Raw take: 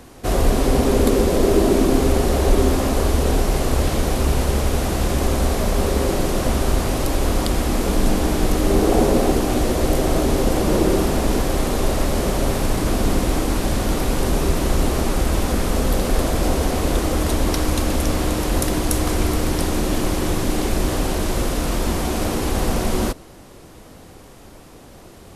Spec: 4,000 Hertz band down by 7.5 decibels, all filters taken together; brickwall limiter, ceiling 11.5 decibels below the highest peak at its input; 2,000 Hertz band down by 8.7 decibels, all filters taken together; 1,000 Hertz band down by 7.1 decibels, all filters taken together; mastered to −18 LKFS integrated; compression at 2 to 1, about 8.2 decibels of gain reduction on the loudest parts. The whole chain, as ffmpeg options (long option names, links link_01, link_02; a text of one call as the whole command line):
ffmpeg -i in.wav -af "equalizer=frequency=1000:width_type=o:gain=-8.5,equalizer=frequency=2000:width_type=o:gain=-6.5,equalizer=frequency=4000:width_type=o:gain=-7.5,acompressor=threshold=-26dB:ratio=2,volume=11.5dB,alimiter=limit=-7dB:level=0:latency=1" out.wav